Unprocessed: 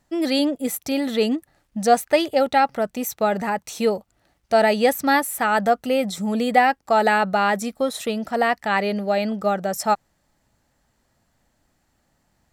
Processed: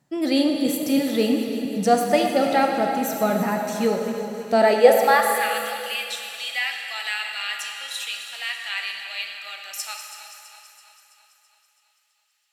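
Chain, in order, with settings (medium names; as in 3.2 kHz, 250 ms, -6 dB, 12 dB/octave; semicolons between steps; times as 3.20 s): backward echo that repeats 165 ms, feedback 75%, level -12 dB; high-pass sweep 150 Hz -> 2.8 kHz, 4.45–5.52 s; plate-style reverb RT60 2.6 s, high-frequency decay 0.95×, DRR 2.5 dB; trim -3 dB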